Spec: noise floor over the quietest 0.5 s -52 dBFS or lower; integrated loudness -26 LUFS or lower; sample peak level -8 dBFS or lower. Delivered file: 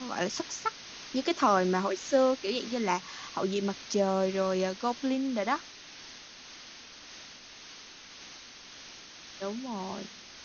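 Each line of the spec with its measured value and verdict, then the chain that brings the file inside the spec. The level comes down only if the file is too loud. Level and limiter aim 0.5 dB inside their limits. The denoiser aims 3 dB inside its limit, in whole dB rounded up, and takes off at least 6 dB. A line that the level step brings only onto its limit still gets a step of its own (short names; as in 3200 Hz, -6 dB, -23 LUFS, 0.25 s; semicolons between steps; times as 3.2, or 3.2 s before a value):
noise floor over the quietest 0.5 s -49 dBFS: fail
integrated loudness -30.5 LUFS: OK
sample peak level -12.5 dBFS: OK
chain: denoiser 6 dB, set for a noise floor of -49 dBFS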